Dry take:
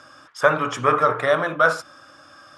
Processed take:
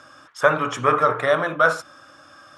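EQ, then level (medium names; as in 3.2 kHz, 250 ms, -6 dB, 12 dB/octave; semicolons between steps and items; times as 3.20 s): band-stop 4.9 kHz, Q 14; 0.0 dB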